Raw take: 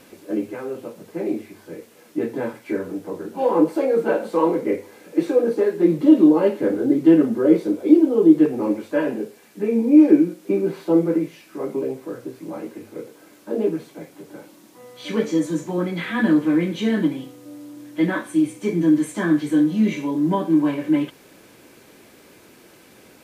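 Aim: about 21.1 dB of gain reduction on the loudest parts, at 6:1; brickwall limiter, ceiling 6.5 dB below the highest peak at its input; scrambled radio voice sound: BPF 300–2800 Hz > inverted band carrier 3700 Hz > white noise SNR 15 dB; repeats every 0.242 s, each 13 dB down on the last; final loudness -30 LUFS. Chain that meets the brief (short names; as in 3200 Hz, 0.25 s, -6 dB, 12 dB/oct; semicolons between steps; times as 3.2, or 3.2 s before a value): compressor 6:1, threshold -31 dBFS; limiter -26.5 dBFS; BPF 300–2800 Hz; feedback echo 0.242 s, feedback 22%, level -13 dB; inverted band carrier 3700 Hz; white noise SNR 15 dB; gain +5 dB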